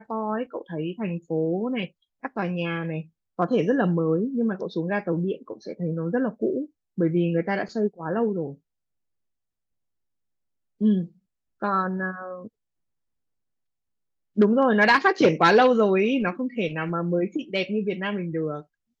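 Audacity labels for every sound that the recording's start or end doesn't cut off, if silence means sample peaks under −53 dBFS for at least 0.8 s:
10.800000	12.490000	sound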